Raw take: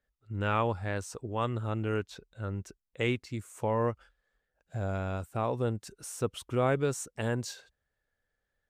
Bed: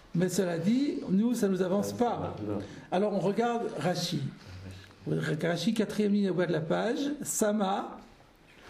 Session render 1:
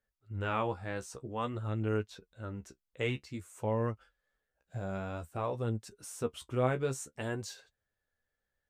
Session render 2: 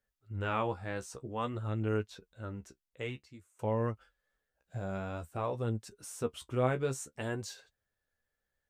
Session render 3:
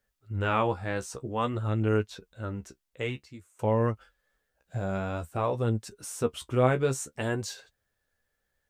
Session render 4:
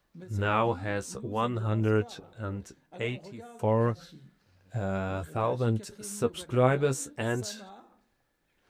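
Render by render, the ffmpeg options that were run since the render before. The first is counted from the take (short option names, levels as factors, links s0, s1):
-af "flanger=delay=9.1:depth=6.8:regen=32:speed=0.52:shape=sinusoidal"
-filter_complex "[0:a]asplit=2[s0][s1];[s0]atrim=end=3.59,asetpts=PTS-STARTPTS,afade=t=out:st=2.45:d=1.14:silence=0.0944061[s2];[s1]atrim=start=3.59,asetpts=PTS-STARTPTS,afade=t=in:d=0.004:c=hsin:silence=0.0944061[s3];[s2][s3]concat=n=2:v=0:a=1"
-af "volume=2.11"
-filter_complex "[1:a]volume=0.112[s0];[0:a][s0]amix=inputs=2:normalize=0"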